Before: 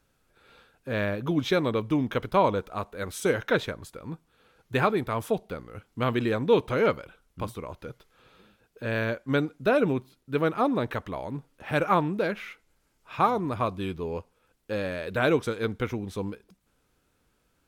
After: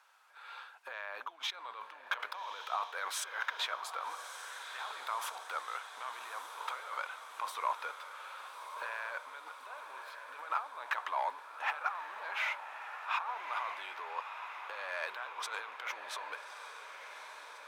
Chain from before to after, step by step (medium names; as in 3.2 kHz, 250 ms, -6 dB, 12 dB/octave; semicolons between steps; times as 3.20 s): compressor with a negative ratio -36 dBFS, ratio -1; overdrive pedal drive 12 dB, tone 3.8 kHz, clips at -15.5 dBFS; ladder high-pass 800 Hz, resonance 50%; on a send: echo that smears into a reverb 1218 ms, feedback 62%, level -8.5 dB; on the sum: trim +2 dB